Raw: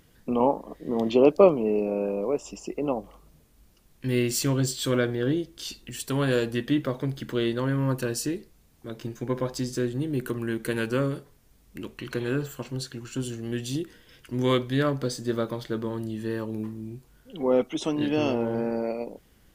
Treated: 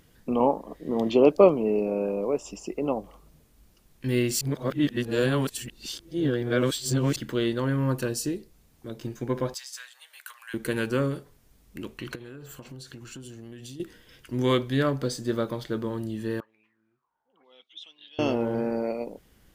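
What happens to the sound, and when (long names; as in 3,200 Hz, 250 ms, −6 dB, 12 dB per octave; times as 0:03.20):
0:04.41–0:07.16: reverse
0:08.08–0:09.03: dynamic equaliser 1,600 Hz, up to −5 dB, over −51 dBFS, Q 0.78
0:09.54–0:10.54: Bessel high-pass filter 1,500 Hz, order 8
0:12.15–0:13.80: downward compressor 16 to 1, threshold −38 dBFS
0:16.40–0:18.19: envelope filter 750–3,500 Hz, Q 10, up, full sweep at −25 dBFS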